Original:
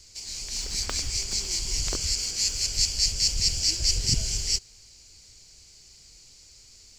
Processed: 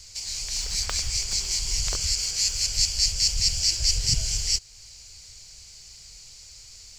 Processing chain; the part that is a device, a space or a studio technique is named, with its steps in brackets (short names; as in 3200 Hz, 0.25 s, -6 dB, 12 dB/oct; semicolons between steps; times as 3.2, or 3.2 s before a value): parallel compression (in parallel at -0.5 dB: compressor, threshold -37 dBFS, peak gain reduction 17.5 dB); on the sum: bell 290 Hz -14 dB 0.97 oct